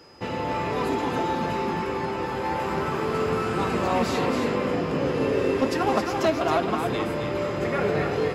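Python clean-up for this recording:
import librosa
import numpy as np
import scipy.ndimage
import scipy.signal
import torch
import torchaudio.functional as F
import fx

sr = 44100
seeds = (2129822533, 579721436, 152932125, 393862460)

y = fx.fix_declip(x, sr, threshold_db=-14.5)
y = fx.notch(y, sr, hz=5000.0, q=30.0)
y = fx.fix_echo_inverse(y, sr, delay_ms=270, level_db=-5.5)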